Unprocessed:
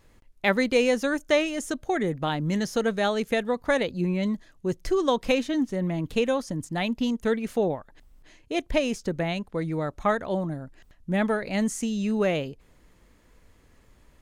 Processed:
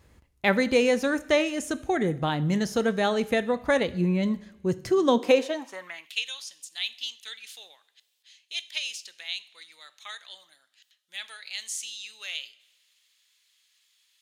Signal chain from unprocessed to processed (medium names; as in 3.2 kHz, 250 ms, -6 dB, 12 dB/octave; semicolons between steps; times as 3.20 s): two-slope reverb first 0.57 s, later 1.8 s, from -16 dB, DRR 14 dB; high-pass sweep 63 Hz -> 3.5 kHz, 4.63–6.24 s